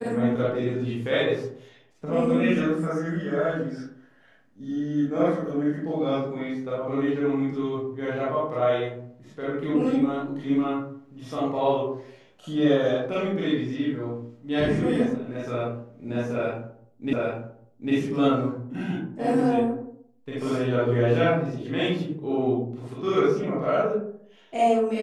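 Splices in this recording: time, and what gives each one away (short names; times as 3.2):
17.13 repeat of the last 0.8 s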